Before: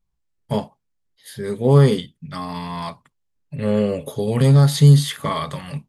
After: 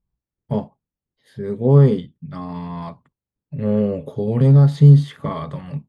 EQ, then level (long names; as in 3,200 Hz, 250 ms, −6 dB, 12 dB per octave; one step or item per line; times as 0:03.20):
high-pass filter 270 Hz 6 dB per octave
Bessel low-pass filter 10,000 Hz
spectral tilt −4.5 dB per octave
−4.5 dB